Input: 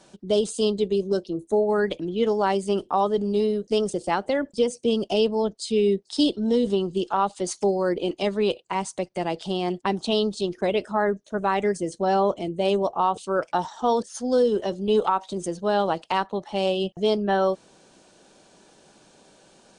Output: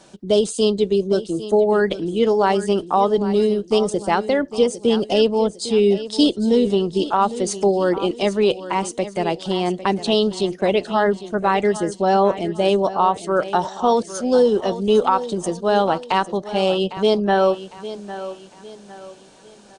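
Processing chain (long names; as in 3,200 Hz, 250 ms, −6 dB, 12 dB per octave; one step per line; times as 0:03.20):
repeating echo 804 ms, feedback 37%, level −14 dB
level +5 dB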